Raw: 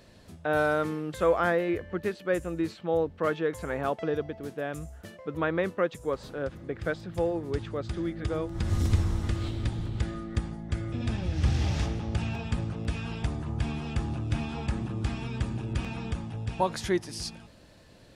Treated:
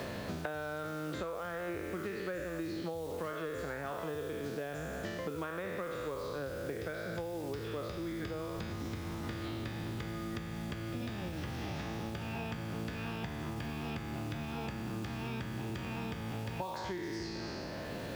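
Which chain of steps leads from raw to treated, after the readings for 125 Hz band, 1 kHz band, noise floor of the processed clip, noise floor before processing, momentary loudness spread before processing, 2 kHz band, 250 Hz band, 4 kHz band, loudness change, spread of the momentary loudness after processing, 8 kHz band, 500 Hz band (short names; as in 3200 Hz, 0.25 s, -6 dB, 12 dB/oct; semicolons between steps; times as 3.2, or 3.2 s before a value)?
-10.5 dB, -8.0 dB, -41 dBFS, -53 dBFS, 9 LU, -6.5 dB, -6.5 dB, -4.5 dB, -8.5 dB, 1 LU, -6.5 dB, -9.0 dB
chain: spectral trails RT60 1.12 s; LPF 6600 Hz 24 dB/oct; compressor 8:1, threshold -38 dBFS, peak gain reduction 21 dB; HPF 180 Hz 6 dB/oct; reverse echo 0.15 s -22.5 dB; bit-crush 10-bit; three-band squash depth 100%; gain +2.5 dB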